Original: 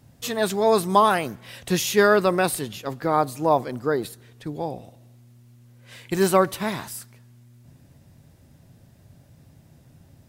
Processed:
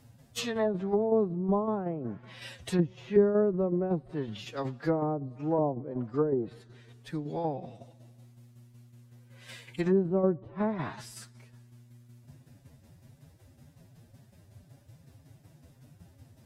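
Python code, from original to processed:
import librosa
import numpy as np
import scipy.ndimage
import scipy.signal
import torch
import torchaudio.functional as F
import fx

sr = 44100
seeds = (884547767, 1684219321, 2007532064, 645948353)

y = fx.tremolo_shape(x, sr, shape='saw_down', hz=8.6, depth_pct=60)
y = fx.env_lowpass_down(y, sr, base_hz=390.0, full_db=-21.0)
y = fx.stretch_vocoder(y, sr, factor=1.6)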